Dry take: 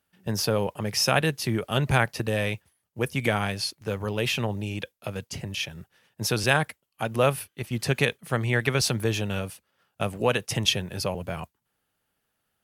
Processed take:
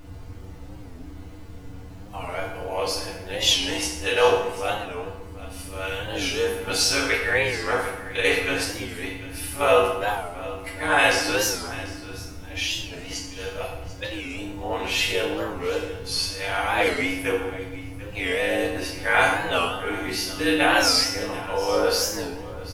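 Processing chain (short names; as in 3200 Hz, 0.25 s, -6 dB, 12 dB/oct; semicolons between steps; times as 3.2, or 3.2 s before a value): whole clip reversed; HPF 510 Hz 12 dB/oct; high shelf 11000 Hz -6 dB; added noise brown -42 dBFS; granular stretch 1.8×, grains 47 ms; echo 0.742 s -16.5 dB; FDN reverb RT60 1 s, low-frequency decay 1.4×, high-frequency decay 0.7×, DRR -6 dB; record warp 45 rpm, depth 160 cents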